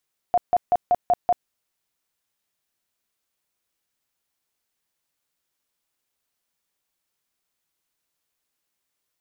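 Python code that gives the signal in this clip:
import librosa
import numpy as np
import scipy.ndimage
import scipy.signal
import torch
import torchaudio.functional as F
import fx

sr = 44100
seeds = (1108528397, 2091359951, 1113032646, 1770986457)

y = fx.tone_burst(sr, hz=712.0, cycles=26, every_s=0.19, bursts=6, level_db=-14.0)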